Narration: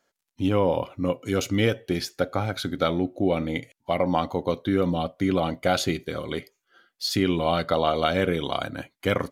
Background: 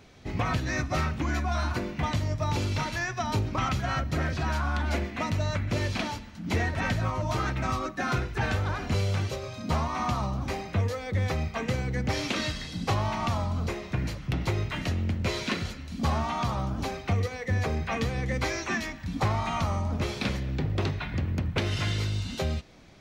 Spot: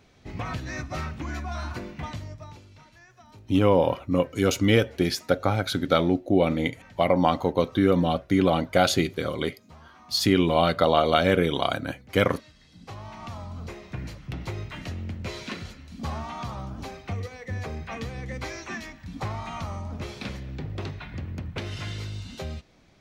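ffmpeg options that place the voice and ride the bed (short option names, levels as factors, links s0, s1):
-filter_complex "[0:a]adelay=3100,volume=1.33[s0];[1:a]volume=4.22,afade=t=out:st=1.91:d=0.71:silence=0.125893,afade=t=in:st=12.53:d=1.42:silence=0.141254[s1];[s0][s1]amix=inputs=2:normalize=0"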